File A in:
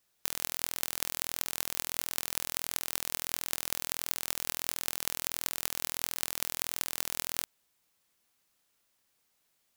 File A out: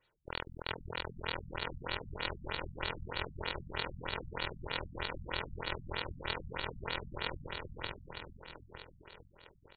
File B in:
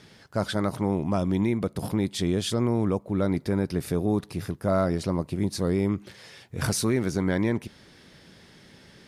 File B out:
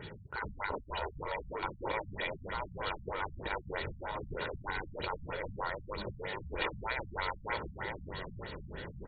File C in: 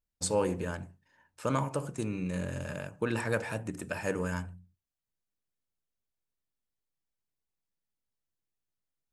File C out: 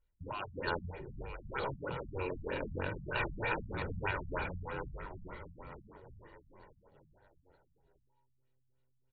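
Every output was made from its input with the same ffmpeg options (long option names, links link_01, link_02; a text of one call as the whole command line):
ffmpeg -i in.wav -filter_complex "[0:a]afftfilt=real='re*lt(hypot(re,im),0.0562)':imag='im*lt(hypot(re,im),0.0562)':win_size=1024:overlap=0.75,asplit=9[link_01][link_02][link_03][link_04][link_05][link_06][link_07][link_08][link_09];[link_02]adelay=453,afreqshift=-130,volume=-6dB[link_10];[link_03]adelay=906,afreqshift=-260,volume=-10.4dB[link_11];[link_04]adelay=1359,afreqshift=-390,volume=-14.9dB[link_12];[link_05]adelay=1812,afreqshift=-520,volume=-19.3dB[link_13];[link_06]adelay=2265,afreqshift=-650,volume=-23.7dB[link_14];[link_07]adelay=2718,afreqshift=-780,volume=-28.2dB[link_15];[link_08]adelay=3171,afreqshift=-910,volume=-32.6dB[link_16];[link_09]adelay=3624,afreqshift=-1040,volume=-37.1dB[link_17];[link_01][link_10][link_11][link_12][link_13][link_14][link_15][link_16][link_17]amix=inputs=9:normalize=0,aeval=exprs='(mod(2.37*val(0)+1,2)-1)/2.37':channel_layout=same,lowshelf=frequency=180:gain=2.5,aecho=1:1:2.1:0.52,afftfilt=real='re*lt(b*sr/1024,210*pow(4600/210,0.5+0.5*sin(2*PI*3.2*pts/sr)))':imag='im*lt(b*sr/1024,210*pow(4600/210,0.5+0.5*sin(2*PI*3.2*pts/sr)))':win_size=1024:overlap=0.75,volume=5.5dB" out.wav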